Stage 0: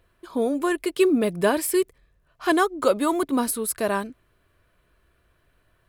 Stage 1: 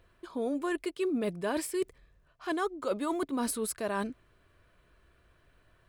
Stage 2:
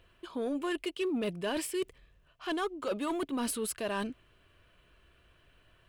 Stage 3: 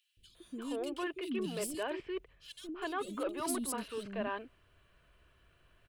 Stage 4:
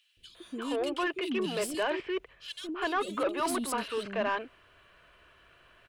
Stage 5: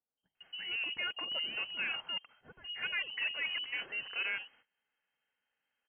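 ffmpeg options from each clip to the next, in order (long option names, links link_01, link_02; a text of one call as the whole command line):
ffmpeg -i in.wav -af "equalizer=frequency=13000:width_type=o:width=0.49:gain=-12,areverse,acompressor=threshold=-29dB:ratio=6,areverse" out.wav
ffmpeg -i in.wav -af "equalizer=frequency=2900:width_type=o:width=0.45:gain=10,asoftclip=type=tanh:threshold=-25dB" out.wav
ffmpeg -i in.wav -filter_complex "[0:a]acrossover=split=320|3000[link_01][link_02][link_03];[link_01]adelay=170[link_04];[link_02]adelay=350[link_05];[link_04][link_05][link_03]amix=inputs=3:normalize=0,volume=-2dB" out.wav
ffmpeg -i in.wav -filter_complex "[0:a]asplit=2[link_01][link_02];[link_02]highpass=frequency=720:poles=1,volume=14dB,asoftclip=type=tanh:threshold=-22.5dB[link_03];[link_01][link_03]amix=inputs=2:normalize=0,lowpass=frequency=3100:poles=1,volume=-6dB,volume=3.5dB" out.wav
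ffmpeg -i in.wav -af "lowpass=frequency=2700:width_type=q:width=0.5098,lowpass=frequency=2700:width_type=q:width=0.6013,lowpass=frequency=2700:width_type=q:width=0.9,lowpass=frequency=2700:width_type=q:width=2.563,afreqshift=-3200,agate=range=-20dB:threshold=-56dB:ratio=16:detection=peak,volume=-6dB" out.wav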